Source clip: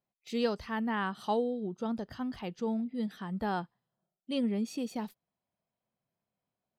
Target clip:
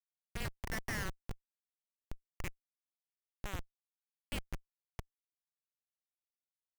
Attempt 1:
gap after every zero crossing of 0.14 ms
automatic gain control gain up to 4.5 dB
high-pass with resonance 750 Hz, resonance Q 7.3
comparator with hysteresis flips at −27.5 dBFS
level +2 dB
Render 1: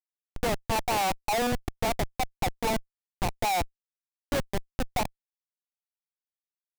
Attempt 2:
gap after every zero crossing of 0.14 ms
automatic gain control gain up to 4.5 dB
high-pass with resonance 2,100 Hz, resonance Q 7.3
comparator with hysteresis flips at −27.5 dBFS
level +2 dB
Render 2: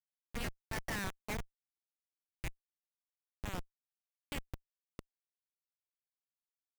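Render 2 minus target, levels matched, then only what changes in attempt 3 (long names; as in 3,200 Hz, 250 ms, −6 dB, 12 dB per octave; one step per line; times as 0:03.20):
gap after every zero crossing: distortion +10 dB
change: gap after every zero crossing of 0.039 ms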